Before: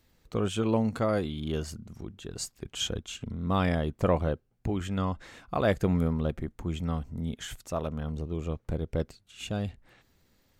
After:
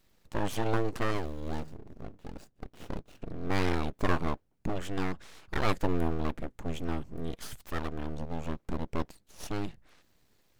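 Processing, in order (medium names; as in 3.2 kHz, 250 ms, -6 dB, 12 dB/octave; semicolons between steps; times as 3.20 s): 1.11–3.22 s: median filter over 41 samples; full-wave rectifier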